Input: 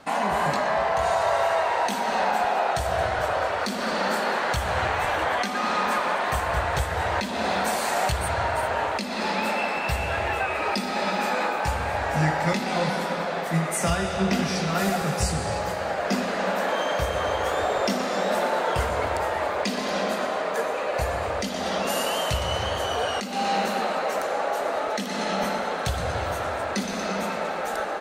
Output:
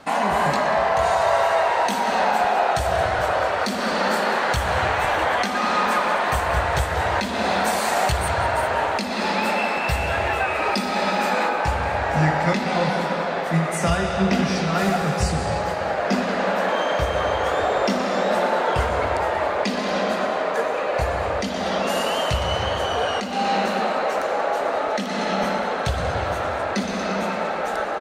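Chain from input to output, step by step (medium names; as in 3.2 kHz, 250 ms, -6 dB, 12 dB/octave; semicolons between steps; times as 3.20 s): treble shelf 7.7 kHz -2 dB, from 11.49 s -12 dB; echo from a far wall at 32 m, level -12 dB; trim +3.5 dB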